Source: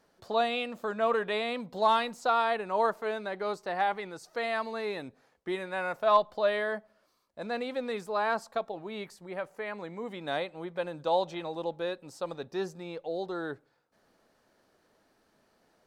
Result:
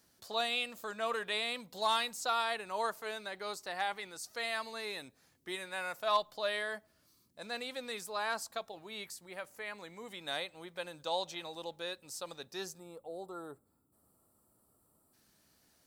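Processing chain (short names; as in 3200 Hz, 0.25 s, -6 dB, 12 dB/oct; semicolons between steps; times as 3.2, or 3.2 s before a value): spectral gain 12.79–15.13, 1400–7200 Hz -17 dB; band noise 50–330 Hz -66 dBFS; pre-emphasis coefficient 0.9; gain +8.5 dB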